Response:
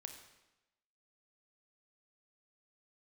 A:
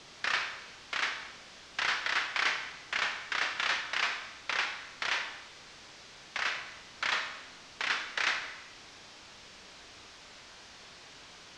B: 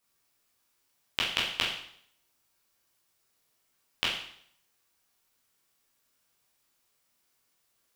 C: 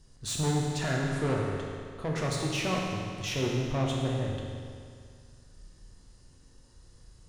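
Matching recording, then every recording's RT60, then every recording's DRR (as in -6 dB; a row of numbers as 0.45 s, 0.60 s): A; 1.0 s, 0.65 s, 2.2 s; 5.0 dB, -6.0 dB, -2.0 dB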